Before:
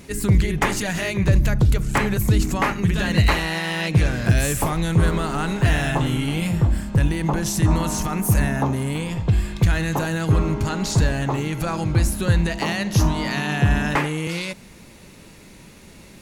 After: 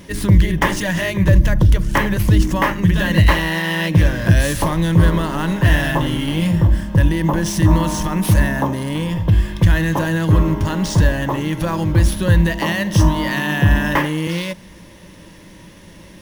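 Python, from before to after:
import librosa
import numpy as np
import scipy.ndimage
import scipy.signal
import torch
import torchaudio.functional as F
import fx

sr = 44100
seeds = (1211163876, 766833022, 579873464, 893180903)

p1 = fx.ripple_eq(x, sr, per_octave=1.2, db=8)
p2 = fx.sample_hold(p1, sr, seeds[0], rate_hz=14000.0, jitter_pct=0)
p3 = p1 + (p2 * 10.0 ** (-4.5 / 20.0))
y = p3 * 10.0 ** (-1.0 / 20.0)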